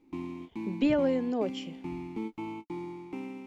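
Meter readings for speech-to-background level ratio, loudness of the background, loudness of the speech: 10.5 dB, -40.0 LUFS, -29.5 LUFS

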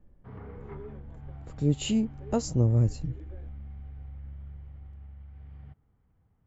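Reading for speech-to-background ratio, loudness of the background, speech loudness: 18.0 dB, -45.5 LUFS, -27.5 LUFS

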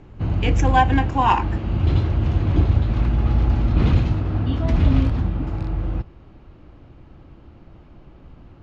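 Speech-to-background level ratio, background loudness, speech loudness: 0.5 dB, -21.5 LUFS, -21.0 LUFS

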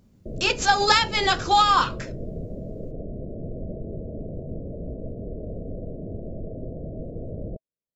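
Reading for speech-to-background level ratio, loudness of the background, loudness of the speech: 16.0 dB, -36.0 LUFS, -20.0 LUFS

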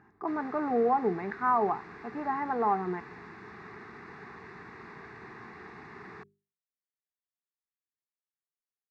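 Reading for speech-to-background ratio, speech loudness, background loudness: 17.0 dB, -30.0 LUFS, -47.0 LUFS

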